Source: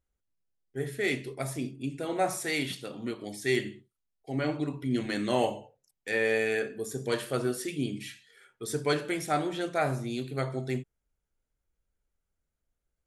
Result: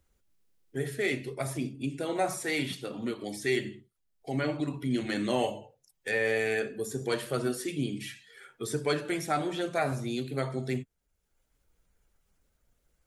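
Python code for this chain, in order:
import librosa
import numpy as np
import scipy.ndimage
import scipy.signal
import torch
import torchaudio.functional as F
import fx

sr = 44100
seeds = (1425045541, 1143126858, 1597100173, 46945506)

y = fx.spec_quant(x, sr, step_db=15)
y = fx.band_squash(y, sr, depth_pct=40)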